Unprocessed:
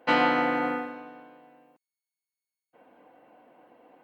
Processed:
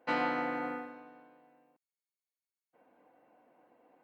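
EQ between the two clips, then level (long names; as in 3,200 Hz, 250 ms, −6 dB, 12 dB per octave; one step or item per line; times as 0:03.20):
parametric band 3,100 Hz −5.5 dB 0.3 octaves
−9.0 dB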